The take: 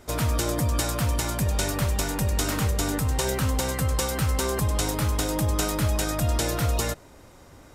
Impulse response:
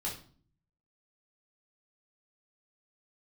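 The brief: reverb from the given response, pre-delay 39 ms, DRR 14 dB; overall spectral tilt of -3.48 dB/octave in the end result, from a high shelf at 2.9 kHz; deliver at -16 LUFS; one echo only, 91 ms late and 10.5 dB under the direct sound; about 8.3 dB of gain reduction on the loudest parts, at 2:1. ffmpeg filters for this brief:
-filter_complex "[0:a]highshelf=f=2900:g=6,acompressor=threshold=0.0178:ratio=2,aecho=1:1:91:0.299,asplit=2[s0][s1];[1:a]atrim=start_sample=2205,adelay=39[s2];[s1][s2]afir=irnorm=-1:irlink=0,volume=0.15[s3];[s0][s3]amix=inputs=2:normalize=0,volume=5.62"

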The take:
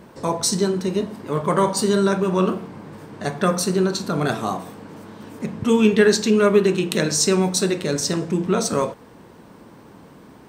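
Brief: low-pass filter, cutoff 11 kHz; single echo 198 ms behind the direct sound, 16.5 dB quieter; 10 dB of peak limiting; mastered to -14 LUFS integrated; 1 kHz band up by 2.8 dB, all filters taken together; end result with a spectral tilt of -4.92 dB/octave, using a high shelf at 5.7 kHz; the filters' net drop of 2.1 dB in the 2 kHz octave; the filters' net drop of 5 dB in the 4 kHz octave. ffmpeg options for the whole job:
-af "lowpass=11000,equalizer=f=1000:t=o:g=4.5,equalizer=f=2000:t=o:g=-3.5,equalizer=f=4000:t=o:g=-8,highshelf=f=5700:g=4,alimiter=limit=0.224:level=0:latency=1,aecho=1:1:198:0.15,volume=2.82"

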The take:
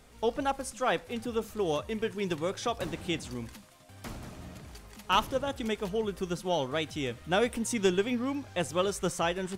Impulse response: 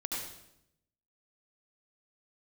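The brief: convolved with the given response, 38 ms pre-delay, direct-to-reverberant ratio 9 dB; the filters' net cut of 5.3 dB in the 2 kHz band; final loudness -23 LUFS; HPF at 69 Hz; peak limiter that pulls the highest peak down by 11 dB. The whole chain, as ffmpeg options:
-filter_complex "[0:a]highpass=69,equalizer=f=2000:t=o:g=-7.5,alimiter=limit=0.0631:level=0:latency=1,asplit=2[s0][s1];[1:a]atrim=start_sample=2205,adelay=38[s2];[s1][s2]afir=irnorm=-1:irlink=0,volume=0.251[s3];[s0][s3]amix=inputs=2:normalize=0,volume=3.98"

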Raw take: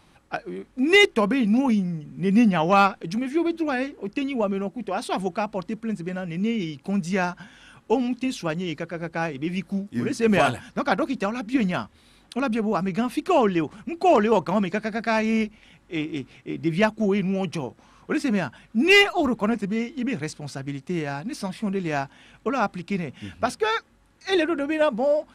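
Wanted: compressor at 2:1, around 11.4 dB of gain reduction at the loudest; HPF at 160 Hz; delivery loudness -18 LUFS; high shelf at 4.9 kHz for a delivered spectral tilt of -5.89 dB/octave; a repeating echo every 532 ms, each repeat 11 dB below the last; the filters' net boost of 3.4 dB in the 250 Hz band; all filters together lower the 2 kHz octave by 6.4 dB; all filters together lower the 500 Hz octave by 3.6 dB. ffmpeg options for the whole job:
-af "highpass=160,equalizer=f=250:t=o:g=7,equalizer=f=500:t=o:g=-7,equalizer=f=2000:t=o:g=-6,highshelf=f=4900:g=-8.5,acompressor=threshold=0.0282:ratio=2,aecho=1:1:532|1064|1596:0.282|0.0789|0.0221,volume=4.22"

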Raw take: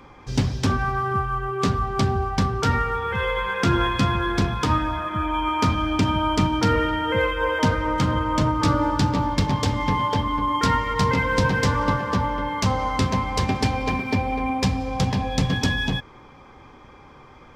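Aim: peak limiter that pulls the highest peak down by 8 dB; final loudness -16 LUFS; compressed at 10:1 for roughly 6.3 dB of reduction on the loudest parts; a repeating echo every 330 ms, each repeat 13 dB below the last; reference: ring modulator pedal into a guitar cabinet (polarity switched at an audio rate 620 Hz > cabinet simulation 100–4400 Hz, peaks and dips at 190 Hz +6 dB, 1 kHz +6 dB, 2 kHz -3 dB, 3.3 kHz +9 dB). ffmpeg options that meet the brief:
-af "acompressor=threshold=0.0794:ratio=10,alimiter=limit=0.112:level=0:latency=1,aecho=1:1:330|660|990:0.224|0.0493|0.0108,aeval=exprs='val(0)*sgn(sin(2*PI*620*n/s))':c=same,highpass=100,equalizer=f=190:t=q:w=4:g=6,equalizer=f=1000:t=q:w=4:g=6,equalizer=f=2000:t=q:w=4:g=-3,equalizer=f=3300:t=q:w=4:g=9,lowpass=f=4400:w=0.5412,lowpass=f=4400:w=1.3066,volume=2.99"

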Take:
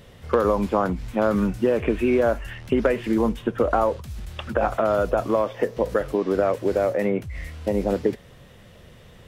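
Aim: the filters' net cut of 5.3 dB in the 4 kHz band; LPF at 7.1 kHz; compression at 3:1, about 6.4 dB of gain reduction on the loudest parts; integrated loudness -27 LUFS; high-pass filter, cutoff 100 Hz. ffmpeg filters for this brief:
-af "highpass=100,lowpass=7100,equalizer=f=4000:t=o:g=-7.5,acompressor=threshold=0.0562:ratio=3,volume=1.33"

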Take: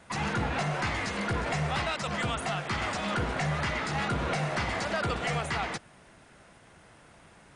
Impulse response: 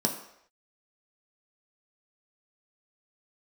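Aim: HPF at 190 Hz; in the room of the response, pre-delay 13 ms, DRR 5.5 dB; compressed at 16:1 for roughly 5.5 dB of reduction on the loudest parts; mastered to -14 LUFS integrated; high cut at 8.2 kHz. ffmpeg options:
-filter_complex "[0:a]highpass=190,lowpass=8200,acompressor=threshold=0.0251:ratio=16,asplit=2[s0][s1];[1:a]atrim=start_sample=2205,adelay=13[s2];[s1][s2]afir=irnorm=-1:irlink=0,volume=0.211[s3];[s0][s3]amix=inputs=2:normalize=0,volume=10.6"

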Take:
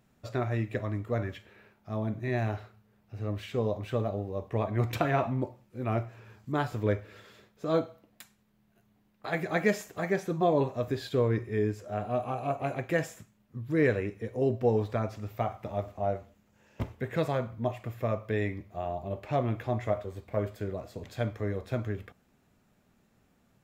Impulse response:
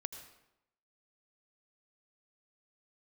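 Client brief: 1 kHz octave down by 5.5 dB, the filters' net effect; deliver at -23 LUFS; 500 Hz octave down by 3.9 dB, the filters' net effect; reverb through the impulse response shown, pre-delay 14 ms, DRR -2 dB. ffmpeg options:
-filter_complex "[0:a]equalizer=f=500:t=o:g=-3,equalizer=f=1000:t=o:g=-7,asplit=2[s0][s1];[1:a]atrim=start_sample=2205,adelay=14[s2];[s1][s2]afir=irnorm=-1:irlink=0,volume=1.5[s3];[s0][s3]amix=inputs=2:normalize=0,volume=2.37"

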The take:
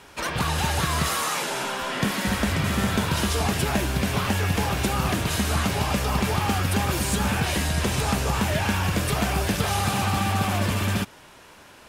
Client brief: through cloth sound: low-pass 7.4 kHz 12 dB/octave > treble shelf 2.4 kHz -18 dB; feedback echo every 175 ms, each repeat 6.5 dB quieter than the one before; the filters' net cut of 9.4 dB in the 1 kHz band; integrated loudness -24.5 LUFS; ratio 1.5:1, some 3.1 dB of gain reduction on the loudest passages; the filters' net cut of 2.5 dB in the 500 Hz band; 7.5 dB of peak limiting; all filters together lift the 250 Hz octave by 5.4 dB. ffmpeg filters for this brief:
-af "equalizer=f=250:t=o:g=8.5,equalizer=f=500:t=o:g=-3,equalizer=f=1000:t=o:g=-8.5,acompressor=threshold=0.0562:ratio=1.5,alimiter=limit=0.119:level=0:latency=1,lowpass=7400,highshelf=f=2400:g=-18,aecho=1:1:175|350|525|700|875|1050:0.473|0.222|0.105|0.0491|0.0231|0.0109,volume=1.58"

